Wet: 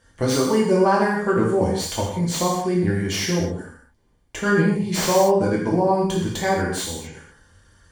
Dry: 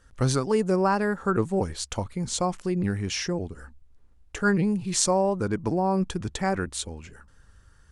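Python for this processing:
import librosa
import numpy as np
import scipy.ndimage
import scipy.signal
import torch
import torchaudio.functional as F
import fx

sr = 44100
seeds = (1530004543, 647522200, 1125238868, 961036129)

p1 = fx.tracing_dist(x, sr, depth_ms=0.11)
p2 = fx.peak_eq(p1, sr, hz=72.0, db=3.0, octaves=0.77)
p3 = np.clip(10.0 ** (16.0 / 20.0) * p2, -1.0, 1.0) / 10.0 ** (16.0 / 20.0)
p4 = p2 + F.gain(torch.from_numpy(p3), -10.5).numpy()
p5 = fx.notch_comb(p4, sr, f0_hz=1300.0)
p6 = fx.rev_gated(p5, sr, seeds[0], gate_ms=270, shape='falling', drr_db=-4.0)
y = fx.slew_limit(p6, sr, full_power_hz=360.0)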